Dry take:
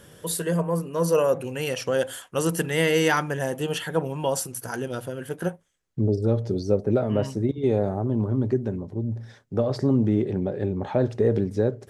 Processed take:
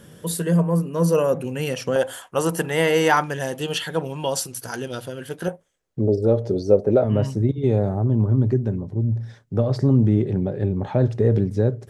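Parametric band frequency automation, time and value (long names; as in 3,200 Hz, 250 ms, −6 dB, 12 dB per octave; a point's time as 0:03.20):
parametric band +8 dB 1.3 octaves
190 Hz
from 0:01.96 840 Hz
from 0:03.24 4,100 Hz
from 0:05.48 550 Hz
from 0:07.04 120 Hz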